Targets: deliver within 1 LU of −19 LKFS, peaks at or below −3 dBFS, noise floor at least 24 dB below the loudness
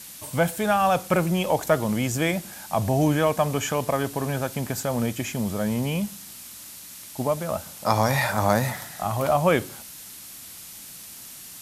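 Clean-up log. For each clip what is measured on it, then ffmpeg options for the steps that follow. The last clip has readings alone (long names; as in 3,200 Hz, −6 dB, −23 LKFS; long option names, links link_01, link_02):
background noise floor −42 dBFS; target noise floor −49 dBFS; integrated loudness −24.5 LKFS; sample peak −4.5 dBFS; target loudness −19.0 LKFS
→ -af "afftdn=noise_reduction=7:noise_floor=-42"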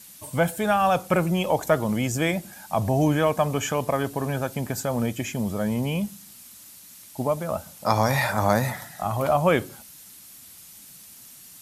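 background noise floor −47 dBFS; target noise floor −49 dBFS
→ -af "afftdn=noise_reduction=6:noise_floor=-47"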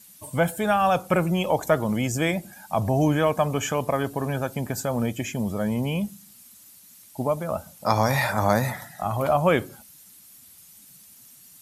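background noise floor −51 dBFS; integrated loudness −24.5 LKFS; sample peak −4.5 dBFS; target loudness −19.0 LKFS
→ -af "volume=5.5dB,alimiter=limit=-3dB:level=0:latency=1"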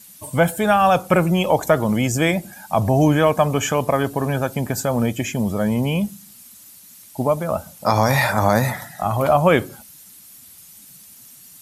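integrated loudness −19.5 LKFS; sample peak −3.0 dBFS; background noise floor −45 dBFS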